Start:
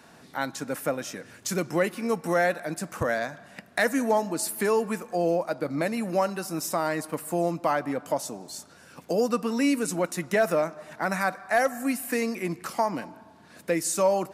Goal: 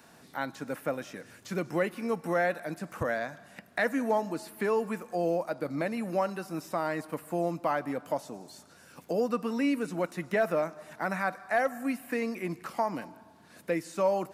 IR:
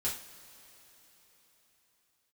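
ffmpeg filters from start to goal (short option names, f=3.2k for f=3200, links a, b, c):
-filter_complex "[0:a]acrossover=split=3700[a][b];[b]acompressor=threshold=-52dB:ratio=4:attack=1:release=60[c];[a][c]amix=inputs=2:normalize=0,highshelf=f=11k:g=9,volume=-4dB"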